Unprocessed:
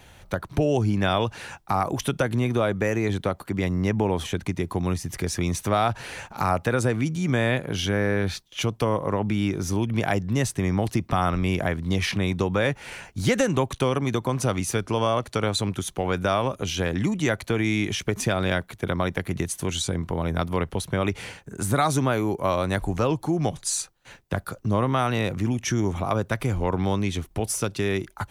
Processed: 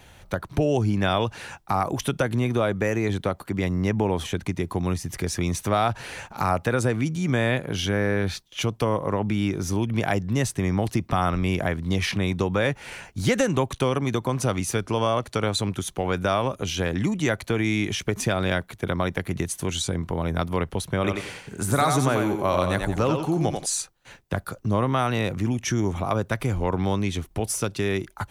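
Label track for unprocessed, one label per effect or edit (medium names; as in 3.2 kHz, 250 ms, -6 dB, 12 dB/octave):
20.950000	23.660000	thinning echo 90 ms, feedback 31%, high-pass 230 Hz, level -4 dB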